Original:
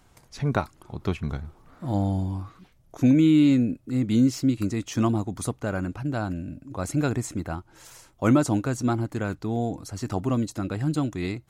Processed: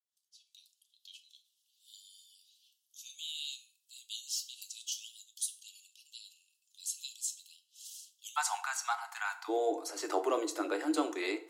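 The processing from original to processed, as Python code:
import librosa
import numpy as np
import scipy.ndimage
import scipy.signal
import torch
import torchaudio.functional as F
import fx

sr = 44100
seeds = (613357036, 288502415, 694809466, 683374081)

y = fx.fade_in_head(x, sr, length_s=2.38)
y = fx.steep_highpass(y, sr, hz=fx.steps((0.0, 2900.0), (8.36, 760.0), (9.48, 320.0)), slope=96)
y = fx.rev_fdn(y, sr, rt60_s=0.52, lf_ratio=0.75, hf_ratio=0.75, size_ms=20.0, drr_db=6.5)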